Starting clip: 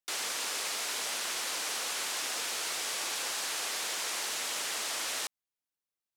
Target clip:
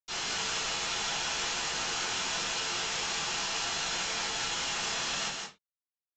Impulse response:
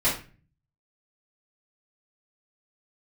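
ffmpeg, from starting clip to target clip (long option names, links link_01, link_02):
-filter_complex "[0:a]lowshelf=frequency=210:width_type=q:width=1.5:gain=9,asplit=2[link_01][link_02];[link_02]alimiter=level_in=7dB:limit=-24dB:level=0:latency=1:release=326,volume=-7dB,volume=-1dB[link_03];[link_01][link_03]amix=inputs=2:normalize=0,flanger=delay=17:depth=7.9:speed=1.1,aresample=16000,acrusher=bits=6:mix=0:aa=0.000001,aresample=44100,aecho=1:1:165:0.668[link_04];[1:a]atrim=start_sample=2205,afade=type=out:start_time=0.23:duration=0.01,atrim=end_sample=10584,asetrate=61740,aresample=44100[link_05];[link_04][link_05]afir=irnorm=-1:irlink=0,volume=-8.5dB"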